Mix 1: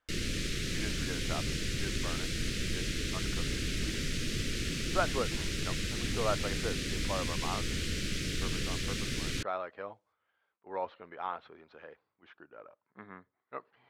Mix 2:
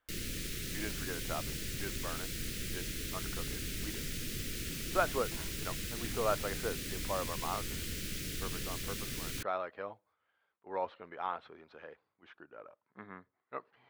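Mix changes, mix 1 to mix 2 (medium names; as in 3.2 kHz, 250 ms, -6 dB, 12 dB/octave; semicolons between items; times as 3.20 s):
background -6.5 dB; master: remove low-pass 6.5 kHz 12 dB/octave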